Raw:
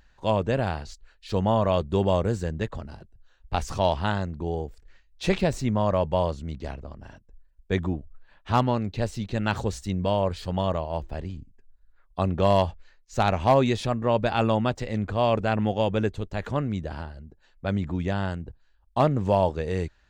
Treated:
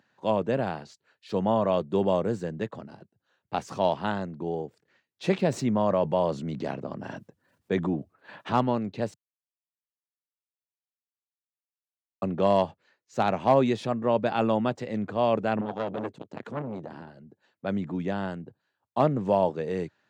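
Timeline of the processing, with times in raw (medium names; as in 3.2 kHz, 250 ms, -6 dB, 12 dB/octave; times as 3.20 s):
5.45–8.53 s: level flattener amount 50%
9.14–12.22 s: mute
15.61–17.07 s: transformer saturation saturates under 1.1 kHz
whole clip: Bessel high-pass 220 Hz, order 8; tilt EQ -2 dB/octave; trim -2 dB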